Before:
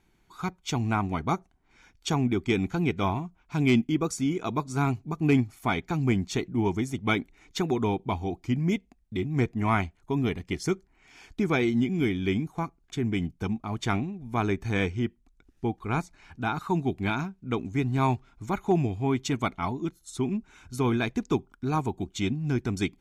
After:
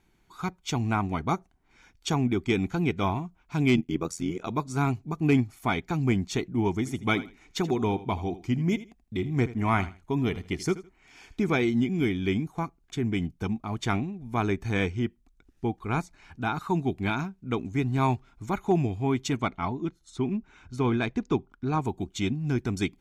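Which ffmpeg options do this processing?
ffmpeg -i in.wav -filter_complex "[0:a]asettb=1/sr,asplit=3[link_01][link_02][link_03];[link_01]atrim=end=3.764[link_04];[link_02]atrim=start=3.76:end=4.5,asetpts=PTS-STARTPTS,afade=type=in:duration=0.004:curve=qsin,afade=type=out:start_time=0.736:duration=0.004:curve=qsin,tremolo=f=86:d=0.824[link_05];[link_03]atrim=start=4.496[link_06];[link_04][link_05]acrossfade=duration=0.004:curve1=hsin:curve2=qsin[link_07];[link_07][link_06]acrossfade=duration=0.004:curve1=qsin:curve2=hsin,asettb=1/sr,asplit=3[link_08][link_09][link_10];[link_08]atrim=end=6.764[link_11];[link_09]atrim=start=6.76:end=11.59,asetpts=PTS-STARTPTS,afade=type=in:duration=0.004:curve=qsin,afade=type=out:start_time=4.826:duration=0.004:curve=qsin,aecho=1:1:80|160:0.158|0.0333,atrim=end_sample=213003[link_12];[link_10]atrim=start=11.586[link_13];[link_11][link_12]acrossfade=duration=0.004:curve1=hsin:curve2=qsin[link_14];[link_14][link_13]acrossfade=duration=0.004:curve1=qsin:curve2=hsin,asettb=1/sr,asplit=3[link_15][link_16][link_17];[link_15]atrim=end=19.404[link_18];[link_16]atrim=start=19.4:end=21.82,asetpts=PTS-STARTPTS,afade=type=in:duration=0.004:curve=qsin,afade=type=out:start_time=2.416:duration=0.004:curve=qsin,adynamicsmooth=sensitivity=1.5:basefreq=5300[link_19];[link_17]atrim=start=21.816[link_20];[link_18][link_19]acrossfade=duration=0.004:curve1=hsin:curve2=qsin[link_21];[link_21][link_20]acrossfade=duration=0.004:curve1=qsin:curve2=hsin" out.wav

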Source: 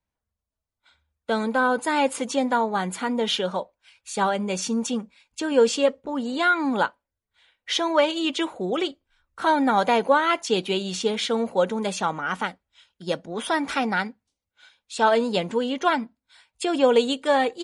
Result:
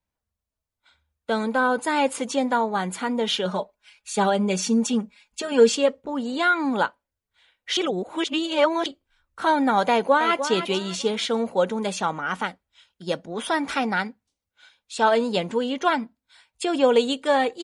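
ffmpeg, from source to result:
ffmpeg -i in.wav -filter_complex "[0:a]asettb=1/sr,asplit=3[link_01][link_02][link_03];[link_01]atrim=end=3.454[link_04];[link_02]atrim=start=3.45:end=5.75,asetpts=PTS-STARTPTS,afade=type=in:duration=0.004:curve=qsin,afade=type=out:start_time=2.296:duration=0.004:curve=qsin,aecho=1:1:4.8:0.79,atrim=end_sample=101430[link_05];[link_03]atrim=start=5.746[link_06];[link_04][link_05]acrossfade=duration=0.004:curve1=hsin:curve2=qsin[link_07];[link_07][link_06]acrossfade=duration=0.004:curve1=qsin:curve2=hsin,asplit=2[link_08][link_09];[link_09]afade=type=in:start_time=9.9:duration=0.01,afade=type=out:start_time=10.48:duration=0.01,aecho=0:1:300|600|900:0.334965|0.10049|0.0301469[link_10];[link_08][link_10]amix=inputs=2:normalize=0,asplit=3[link_11][link_12][link_13];[link_11]atrim=end=7.772[link_14];[link_12]atrim=start=7.768:end=8.862,asetpts=PTS-STARTPTS,areverse[link_15];[link_13]atrim=start=8.858[link_16];[link_14][link_15]acrossfade=duration=0.004:curve1=hsin:curve2=hsin[link_17];[link_17][link_16]acrossfade=duration=0.004:curve1=hsin:curve2=hsin" out.wav

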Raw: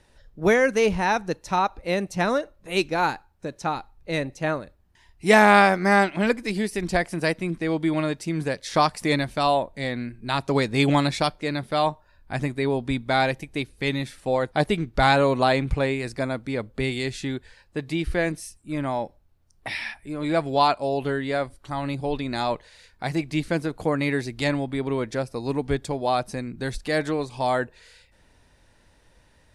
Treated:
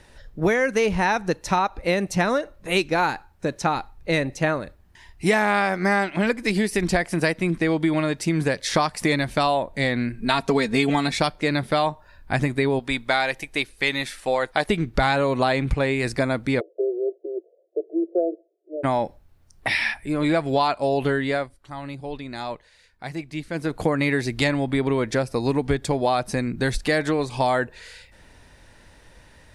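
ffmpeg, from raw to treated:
ffmpeg -i in.wav -filter_complex "[0:a]asettb=1/sr,asplit=3[link_01][link_02][link_03];[link_01]atrim=end=10.174[link_04];[link_02]atrim=start=10.17:end=11.14,asetpts=PTS-STARTPTS,afade=type=in:duration=0.004:curve=qsin,afade=type=out:start_time=0.966:duration=0.004:curve=qsin,aecho=1:1:4.4:0.65,atrim=end_sample=42777[link_05];[link_03]atrim=start=11.136[link_06];[link_04][link_05]acrossfade=duration=0.004:curve1=hsin:curve2=qsin[link_07];[link_07][link_06]acrossfade=duration=0.004:curve1=qsin:curve2=hsin,asettb=1/sr,asplit=3[link_08][link_09][link_10];[link_08]atrim=end=12.794[link_11];[link_09]atrim=start=12.79:end=14.69,asetpts=PTS-STARTPTS,afade=type=in:duration=0.004:curve=qsin,afade=type=out:start_time=1.896:duration=0.004:curve=qsin,equalizer=frequency=110:width=0.33:gain=-14[link_12];[link_10]atrim=start=14.686[link_13];[link_11][link_12]acrossfade=duration=0.004:curve1=hsin:curve2=qsin[link_14];[link_14][link_13]acrossfade=duration=0.004:curve1=qsin:curve2=hsin,asplit=3[link_15][link_16][link_17];[link_15]afade=type=out:start_time=16.59:duration=0.02[link_18];[link_16]asuperpass=centerf=480:order=20:qfactor=1.3,afade=type=in:start_time=16.59:duration=0.02,afade=type=out:start_time=18.83:duration=0.02[link_19];[link_17]afade=type=in:start_time=18.83:duration=0.02[link_20];[link_18][link_19][link_20]amix=inputs=3:normalize=0,asplit=3[link_21][link_22][link_23];[link_21]atrim=end=21.49,asetpts=PTS-STARTPTS,afade=type=out:start_time=21.15:duration=0.34:silence=0.211349[link_24];[link_22]atrim=start=21.49:end=23.53,asetpts=PTS-STARTPTS,volume=-13.5dB[link_25];[link_23]atrim=start=23.53,asetpts=PTS-STARTPTS,afade=type=in:duration=0.34:silence=0.211349[link_26];[link_24][link_25][link_26]concat=n=3:v=0:a=1,equalizer=frequency=1900:width_type=o:width=0.77:gain=2.5,acompressor=threshold=-25dB:ratio=6,volume=7.5dB" out.wav

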